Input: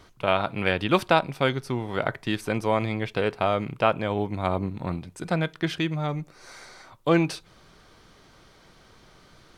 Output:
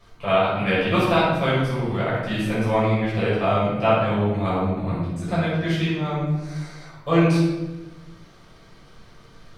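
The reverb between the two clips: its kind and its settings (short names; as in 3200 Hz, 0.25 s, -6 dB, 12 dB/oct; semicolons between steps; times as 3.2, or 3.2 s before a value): shoebox room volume 570 m³, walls mixed, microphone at 5.9 m; gain -9.5 dB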